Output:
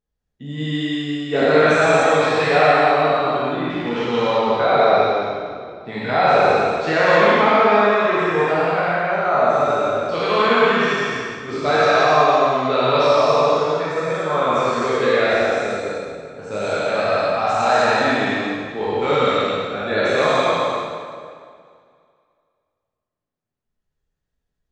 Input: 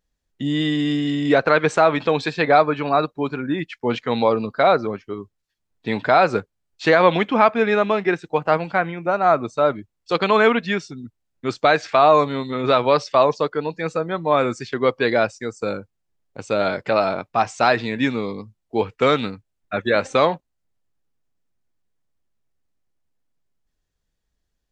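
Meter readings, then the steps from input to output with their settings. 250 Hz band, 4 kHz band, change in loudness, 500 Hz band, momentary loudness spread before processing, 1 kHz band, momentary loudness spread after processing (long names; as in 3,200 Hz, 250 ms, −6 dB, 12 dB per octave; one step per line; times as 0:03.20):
−0.5 dB, +3.5 dB, +2.5 dB, +2.5 dB, 12 LU, +3.0 dB, 12 LU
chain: peak hold with a decay on every bin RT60 2.23 s
reverb whose tail is shaped and stops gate 320 ms flat, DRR −6.5 dB
one half of a high-frequency compander decoder only
level −10 dB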